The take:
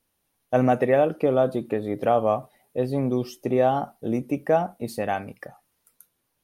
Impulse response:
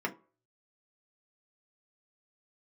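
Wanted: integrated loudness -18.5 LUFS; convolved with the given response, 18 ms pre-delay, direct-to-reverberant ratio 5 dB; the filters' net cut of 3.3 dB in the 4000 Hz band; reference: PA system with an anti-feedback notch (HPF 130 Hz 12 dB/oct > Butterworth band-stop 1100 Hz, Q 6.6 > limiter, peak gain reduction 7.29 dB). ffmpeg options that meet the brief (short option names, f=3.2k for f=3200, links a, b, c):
-filter_complex "[0:a]equalizer=f=4k:t=o:g=-4.5,asplit=2[a][b];[1:a]atrim=start_sample=2205,adelay=18[c];[b][c]afir=irnorm=-1:irlink=0,volume=-11dB[d];[a][d]amix=inputs=2:normalize=0,highpass=130,asuperstop=centerf=1100:order=8:qfactor=6.6,volume=7dB,alimiter=limit=-7.5dB:level=0:latency=1"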